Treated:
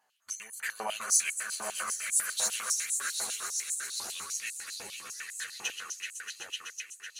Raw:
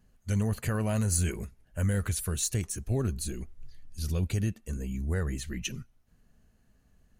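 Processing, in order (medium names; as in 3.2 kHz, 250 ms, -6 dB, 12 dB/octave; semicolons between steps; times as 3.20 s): echo with a slow build-up 126 ms, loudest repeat 5, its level -10 dB; chorus voices 4, 0.81 Hz, delay 11 ms, depth 3.4 ms; step-sequenced high-pass 10 Hz 850–7900 Hz; trim +3 dB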